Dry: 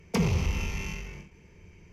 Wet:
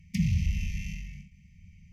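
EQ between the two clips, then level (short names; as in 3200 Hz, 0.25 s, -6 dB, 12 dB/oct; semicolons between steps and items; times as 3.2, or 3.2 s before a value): brick-wall FIR band-stop 230–1800 Hz; low shelf 430 Hz +7 dB; -6.0 dB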